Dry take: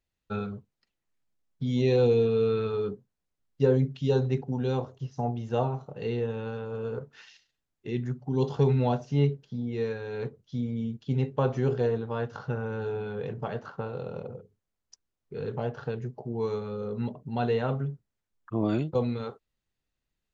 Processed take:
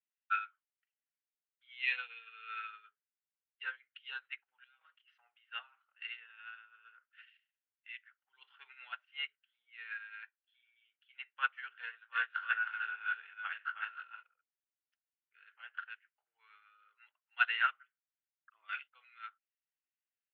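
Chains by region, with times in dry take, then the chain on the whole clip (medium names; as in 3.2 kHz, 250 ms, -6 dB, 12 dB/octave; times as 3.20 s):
4.64–5.18 s: comb 6.3 ms, depth 73% + compressor with a negative ratio -37 dBFS
10.23–10.85 s: treble shelf 4.5 kHz -6.5 dB + comb 1.2 ms
11.81–14.23 s: steep high-pass 190 Hz + doubling 19 ms -5 dB + delay 314 ms -3.5 dB
whole clip: elliptic band-pass 1.4–3 kHz, stop band 80 dB; upward expansion 2.5:1, over -55 dBFS; trim +15.5 dB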